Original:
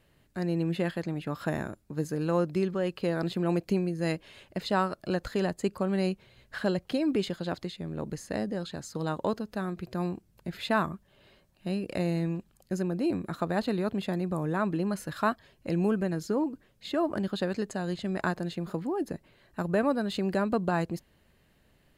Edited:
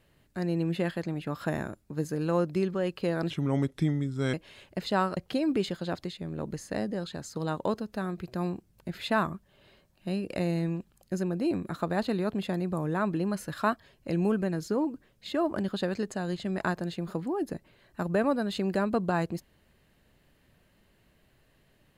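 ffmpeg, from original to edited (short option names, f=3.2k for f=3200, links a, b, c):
-filter_complex "[0:a]asplit=4[a][b][c][d];[a]atrim=end=3.304[e];[b]atrim=start=3.3:end=4.13,asetpts=PTS-STARTPTS,asetrate=35280,aresample=44100[f];[c]atrim=start=4.126:end=4.962[g];[d]atrim=start=6.758[h];[e][f]acrossfade=d=0.004:c1=hsin:c2=hsin[i];[i][g]acrossfade=d=0.004:c1=hsin:c2=hsin[j];[j][h]acrossfade=d=0.004:c1=hsin:c2=hsin"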